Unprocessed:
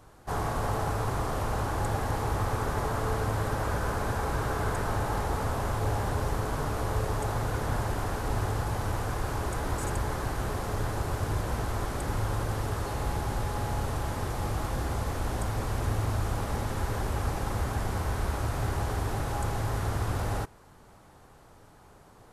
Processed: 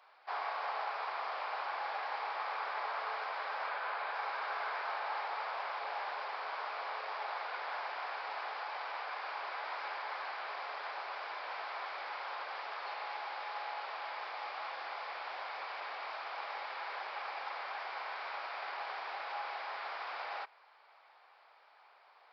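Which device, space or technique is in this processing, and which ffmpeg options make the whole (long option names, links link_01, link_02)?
musical greeting card: -filter_complex "[0:a]aresample=11025,aresample=44100,highpass=frequency=690:width=0.5412,highpass=frequency=690:width=1.3066,equalizer=frequency=2300:width_type=o:width=0.33:gain=8,asettb=1/sr,asplit=3[link_01][link_02][link_03];[link_01]atrim=end=3.694[link_04];[link_02]atrim=start=3.69:end=4.14,asetpts=PTS-STARTPTS,afade=type=in:duration=0.004:curve=qsin,afade=type=out:start_time=0.446:duration=0.004:curve=qsin,lowpass=frequency=4700:width=0.5412,lowpass=frequency=4700:width=1.3066[link_05];[link_03]atrim=start=4.136[link_06];[link_04][link_05]acrossfade=duration=0.004:curve1=hsin:curve2=qsin[link_07];[link_07][link_06]acrossfade=duration=0.004:curve1=qsin:curve2=hsin,volume=-3.5dB"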